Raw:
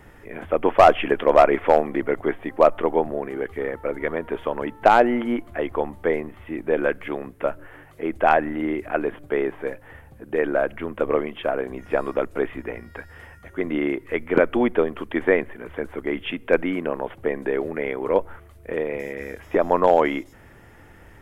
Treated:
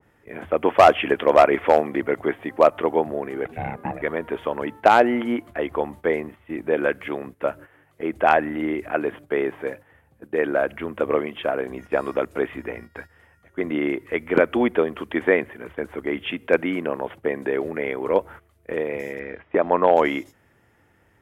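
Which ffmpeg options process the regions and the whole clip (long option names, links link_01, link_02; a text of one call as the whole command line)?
ffmpeg -i in.wav -filter_complex "[0:a]asettb=1/sr,asplit=3[link_01][link_02][link_03];[link_01]atrim=end=3.454[link_04];[link_02]atrim=start=3.45:end=4.02,asetpts=PTS-STARTPTS,afade=type=in:duration=0.004:curve=qsin,afade=type=out:start_time=0.566:duration=0.004:curve=qsin,equalizer=frequency=150:width=1.4:gain=11.5,aeval=exprs='val(0)*sin(2*PI*320*n/s)':channel_layout=same[link_05];[link_03]atrim=start=4.016[link_06];[link_04][link_05]acrossfade=duration=0.004:curve1=hsin:curve2=qsin[link_07];[link_07][link_06]acrossfade=duration=0.004:curve1=qsin:curve2=hsin,asettb=1/sr,asplit=3[link_08][link_09][link_10];[link_08]atrim=end=19.194[link_11];[link_09]atrim=start=19.19:end=19.97,asetpts=PTS-STARTPTS,afade=type=in:duration=0.004:curve=qsin,afade=type=out:start_time=0.776:duration=0.004:curve=qsin,lowpass=frequency=3100:width=0.5412,lowpass=frequency=3100:width=1.3066,lowshelf=frequency=64:gain=-9[link_12];[link_10]atrim=start=19.966[link_13];[link_11][link_12]acrossfade=duration=0.004:curve1=hsin:curve2=qsin[link_14];[link_14][link_13]acrossfade=duration=0.004:curve1=qsin:curve2=hsin,highpass=73,agate=range=-11dB:threshold=-39dB:ratio=16:detection=peak,adynamicequalizer=threshold=0.0355:dfrequency=1800:dqfactor=0.7:tfrequency=1800:tqfactor=0.7:attack=5:release=100:ratio=0.375:range=1.5:mode=boostabove:tftype=highshelf" out.wav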